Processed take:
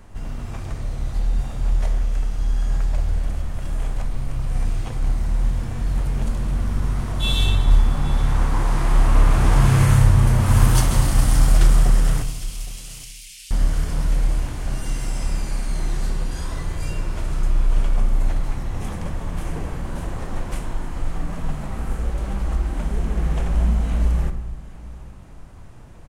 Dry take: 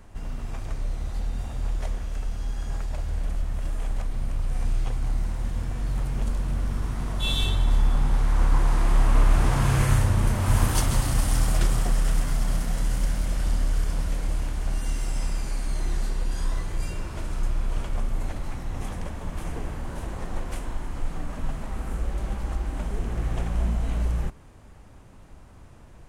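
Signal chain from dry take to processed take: 12.22–13.51 Chebyshev high-pass 2500 Hz, order 4; echo 0.814 s -19.5 dB; on a send at -8 dB: reverb RT60 0.80 s, pre-delay 21 ms; on the sum: gain +3 dB

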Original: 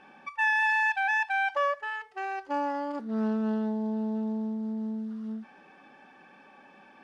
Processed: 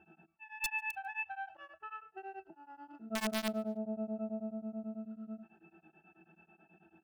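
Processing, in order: auto swell 0.323 s; octave resonator E, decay 0.15 s; wrapped overs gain 35.5 dB; feedback echo 0.145 s, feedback 35%, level -24 dB; beating tremolo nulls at 9.2 Hz; gain +9 dB

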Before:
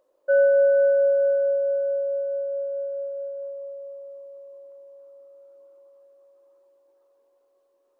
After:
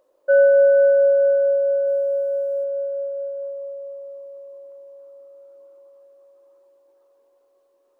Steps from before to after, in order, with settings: 1.87–2.64 tone controls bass +9 dB, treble +14 dB; gain +4 dB

